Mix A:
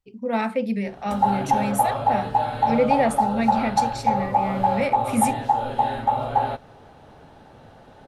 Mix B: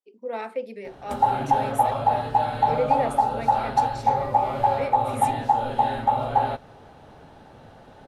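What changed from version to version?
speech: add ladder high-pass 320 Hz, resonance 45%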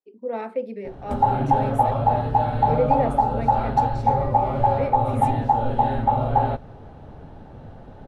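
master: add tilt -3 dB/oct

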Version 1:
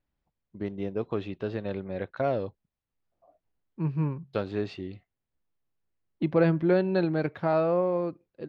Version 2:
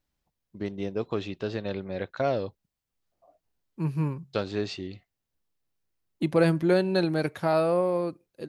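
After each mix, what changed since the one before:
first voice: add LPF 5500 Hz 24 dB/oct; master: remove air absorption 300 m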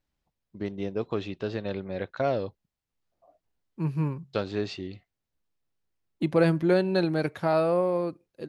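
master: add high shelf 7300 Hz -8 dB

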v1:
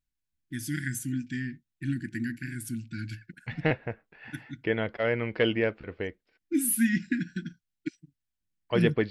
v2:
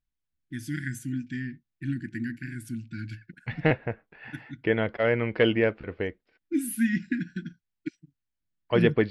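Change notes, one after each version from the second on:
second voice +3.5 dB; master: add high shelf 5500 Hz -10.5 dB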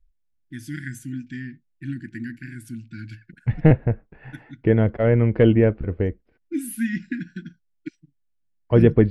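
second voice: add tilt -4.5 dB/oct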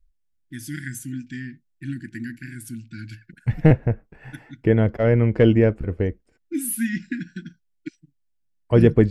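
second voice: remove steep low-pass 4400 Hz 36 dB/oct; master: add high shelf 5500 Hz +10.5 dB

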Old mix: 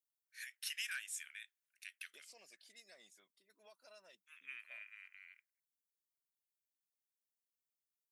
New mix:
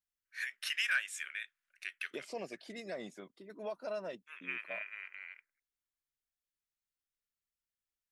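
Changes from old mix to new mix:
second voice +3.0 dB; master: remove pre-emphasis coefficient 0.97

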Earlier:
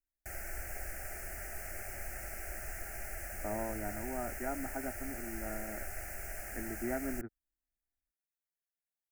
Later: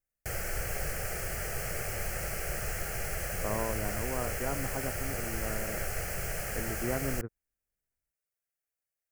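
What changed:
background +6.0 dB; master: remove fixed phaser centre 720 Hz, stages 8

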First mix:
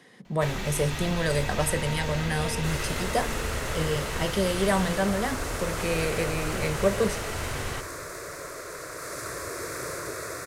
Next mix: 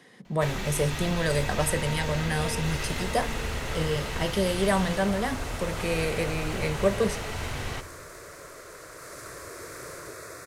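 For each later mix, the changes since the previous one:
second sound -6.5 dB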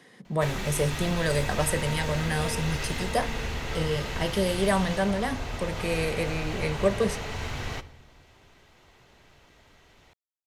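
second sound: muted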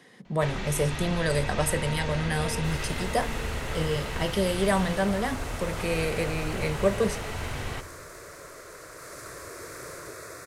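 first sound: add air absorption 81 m; second sound: unmuted

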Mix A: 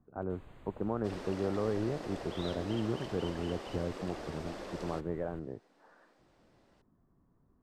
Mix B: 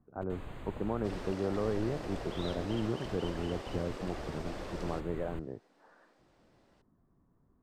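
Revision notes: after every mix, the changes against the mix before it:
first sound +10.0 dB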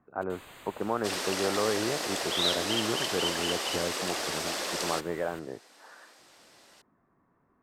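speech +9.5 dB; second sound +10.5 dB; master: add tilt +4.5 dB/oct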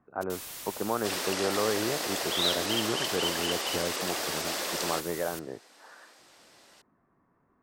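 first sound: remove running mean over 8 samples

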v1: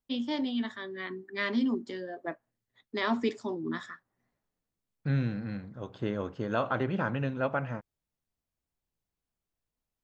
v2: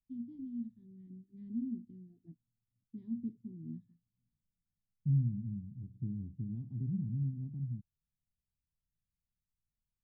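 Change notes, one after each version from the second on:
master: add inverse Chebyshev low-pass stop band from 510 Hz, stop band 50 dB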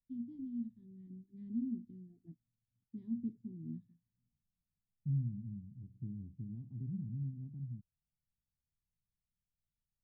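second voice -5.0 dB

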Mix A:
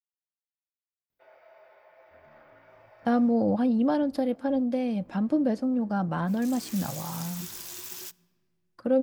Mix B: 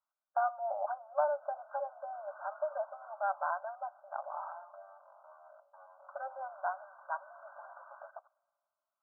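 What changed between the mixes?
speech: entry -2.70 s; second sound +9.5 dB; master: add brick-wall FIR band-pass 560–1600 Hz

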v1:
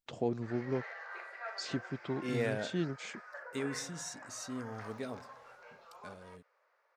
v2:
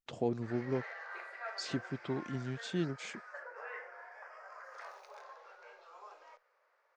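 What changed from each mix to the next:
second voice: muted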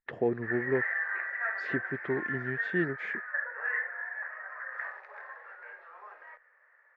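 speech: add bell 410 Hz +7.5 dB 0.67 oct; master: add synth low-pass 1800 Hz, resonance Q 12

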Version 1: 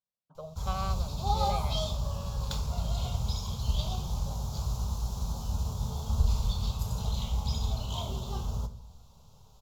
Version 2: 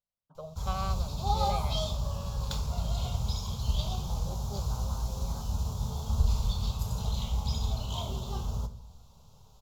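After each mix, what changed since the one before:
second voice: unmuted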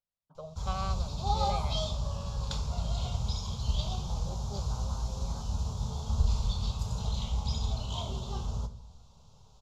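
master: add Chebyshev low-pass 6500 Hz, order 2

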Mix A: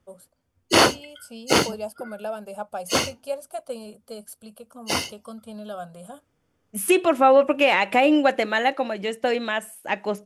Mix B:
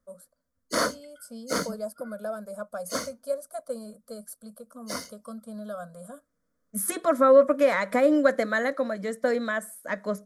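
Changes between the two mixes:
background -6.0 dB; master: add fixed phaser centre 550 Hz, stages 8

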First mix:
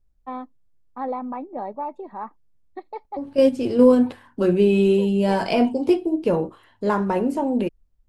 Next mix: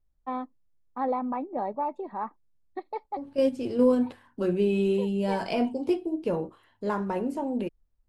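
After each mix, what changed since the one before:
second voice -7.5 dB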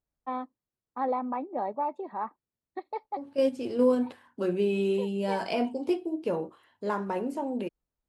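master: add HPF 250 Hz 6 dB/oct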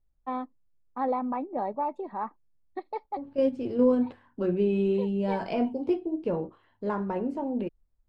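second voice: add tape spacing loss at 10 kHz 20 dB; master: remove HPF 250 Hz 6 dB/oct

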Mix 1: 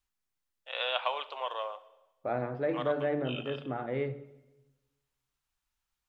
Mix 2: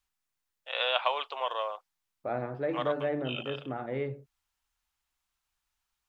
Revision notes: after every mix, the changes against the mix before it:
first voice +4.0 dB; reverb: off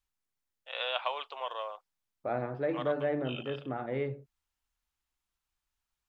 first voice -5.0 dB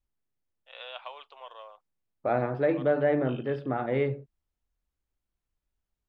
first voice -8.5 dB; second voice +6.5 dB

